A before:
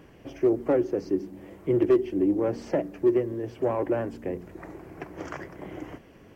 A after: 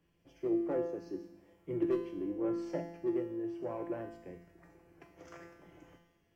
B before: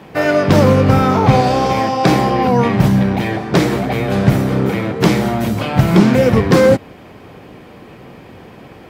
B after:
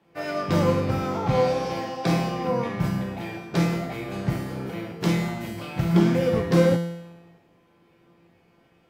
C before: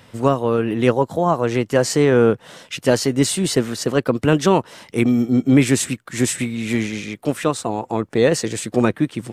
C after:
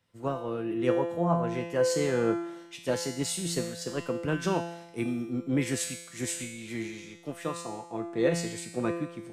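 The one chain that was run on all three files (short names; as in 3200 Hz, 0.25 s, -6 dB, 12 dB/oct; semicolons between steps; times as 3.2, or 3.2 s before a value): resonator 170 Hz, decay 1.2 s, mix 90%; three-band expander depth 40%; gain +4 dB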